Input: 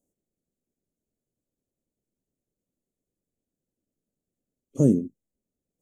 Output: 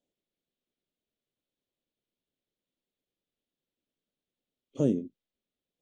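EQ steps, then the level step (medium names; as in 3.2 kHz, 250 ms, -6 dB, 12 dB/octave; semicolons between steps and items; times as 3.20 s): resonant low-pass 3.5 kHz, resonance Q 3; bass shelf 350 Hz -11 dB; 0.0 dB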